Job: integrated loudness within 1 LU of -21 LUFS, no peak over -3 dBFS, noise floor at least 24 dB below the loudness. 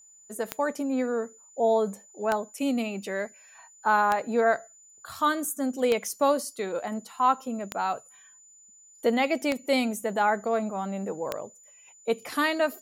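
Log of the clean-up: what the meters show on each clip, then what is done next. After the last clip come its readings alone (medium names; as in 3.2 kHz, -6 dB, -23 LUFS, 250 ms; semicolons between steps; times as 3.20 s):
clicks found 7; steady tone 7 kHz; tone level -52 dBFS; loudness -27.5 LUFS; peak level -8.5 dBFS; loudness target -21.0 LUFS
-> de-click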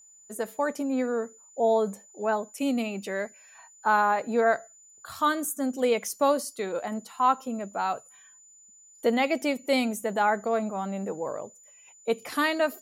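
clicks found 0; steady tone 7 kHz; tone level -52 dBFS
-> band-stop 7 kHz, Q 30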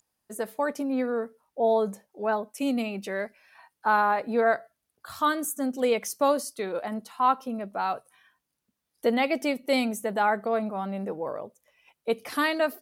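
steady tone not found; loudness -27.5 LUFS; peak level -10.0 dBFS; loudness target -21.0 LUFS
-> trim +6.5 dB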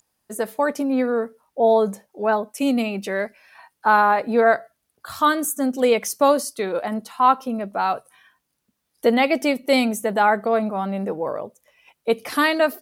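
loudness -21.0 LUFS; peak level -3.5 dBFS; noise floor -76 dBFS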